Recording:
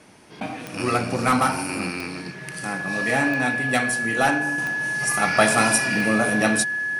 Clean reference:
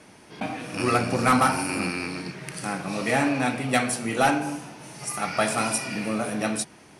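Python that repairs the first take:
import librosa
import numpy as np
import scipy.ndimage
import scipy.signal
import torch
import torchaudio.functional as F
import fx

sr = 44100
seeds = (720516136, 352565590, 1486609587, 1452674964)

y = fx.fix_declick_ar(x, sr, threshold=10.0)
y = fx.notch(y, sr, hz=1700.0, q=30.0)
y = fx.fix_level(y, sr, at_s=4.58, step_db=-6.0)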